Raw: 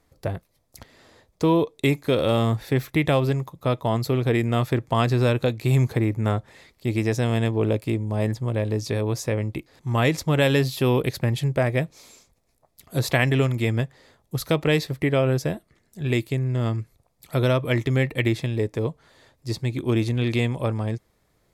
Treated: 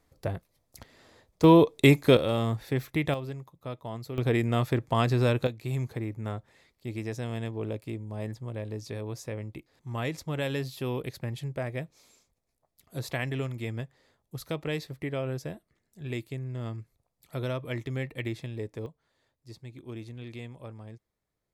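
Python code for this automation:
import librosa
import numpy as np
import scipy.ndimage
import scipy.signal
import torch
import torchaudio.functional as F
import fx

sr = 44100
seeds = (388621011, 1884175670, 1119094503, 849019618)

y = fx.gain(x, sr, db=fx.steps((0.0, -4.0), (1.44, 2.5), (2.17, -6.5), (3.14, -14.5), (4.18, -4.0), (5.47, -11.5), (18.86, -18.5)))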